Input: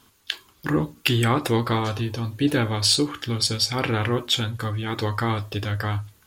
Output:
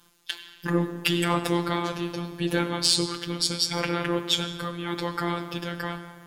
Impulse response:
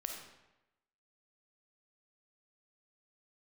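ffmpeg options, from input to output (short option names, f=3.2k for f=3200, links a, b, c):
-filter_complex "[0:a]asplit=2[a][b];[1:a]atrim=start_sample=2205,asetrate=23373,aresample=44100,highshelf=f=5.7k:g=2[c];[b][c]afir=irnorm=-1:irlink=0,volume=-7.5dB[d];[a][d]amix=inputs=2:normalize=0,asoftclip=type=hard:threshold=-6dB,afftfilt=real='hypot(re,im)*cos(PI*b)':imag='0':win_size=1024:overlap=0.75,volume=-2.5dB"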